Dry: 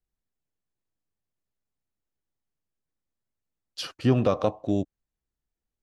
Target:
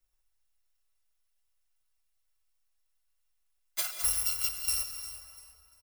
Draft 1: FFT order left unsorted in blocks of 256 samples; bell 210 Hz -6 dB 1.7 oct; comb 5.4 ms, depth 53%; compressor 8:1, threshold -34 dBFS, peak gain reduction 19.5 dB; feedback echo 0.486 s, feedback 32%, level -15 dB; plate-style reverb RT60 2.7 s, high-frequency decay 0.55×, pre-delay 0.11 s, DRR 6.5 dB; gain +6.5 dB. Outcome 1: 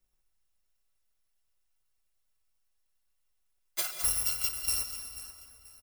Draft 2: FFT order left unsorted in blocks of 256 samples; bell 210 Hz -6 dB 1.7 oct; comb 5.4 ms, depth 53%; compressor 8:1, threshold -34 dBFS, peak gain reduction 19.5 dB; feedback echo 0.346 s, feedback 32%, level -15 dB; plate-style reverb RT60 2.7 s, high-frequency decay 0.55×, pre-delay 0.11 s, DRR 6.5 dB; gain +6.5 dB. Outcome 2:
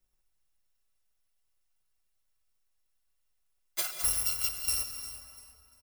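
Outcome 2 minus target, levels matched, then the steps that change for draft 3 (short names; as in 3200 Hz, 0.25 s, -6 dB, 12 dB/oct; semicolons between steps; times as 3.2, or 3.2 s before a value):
250 Hz band +8.0 dB
change: bell 210 Hz -17 dB 1.7 oct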